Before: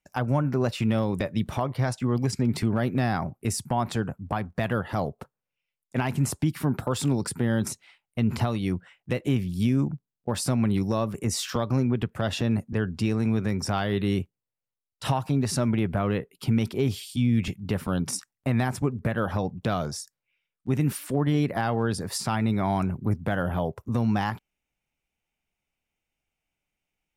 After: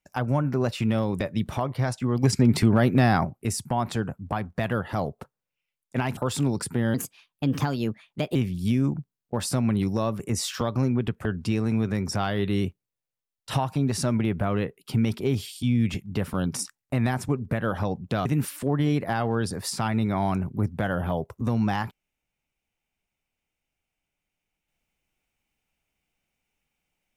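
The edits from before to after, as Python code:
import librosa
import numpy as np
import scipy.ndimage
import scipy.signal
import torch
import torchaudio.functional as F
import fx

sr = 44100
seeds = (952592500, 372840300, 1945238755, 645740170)

y = fx.edit(x, sr, fx.clip_gain(start_s=2.23, length_s=1.02, db=5.5),
    fx.cut(start_s=6.17, length_s=0.65),
    fx.speed_span(start_s=7.59, length_s=1.71, speed=1.21),
    fx.cut(start_s=12.2, length_s=0.59),
    fx.cut(start_s=19.79, length_s=0.94), tone=tone)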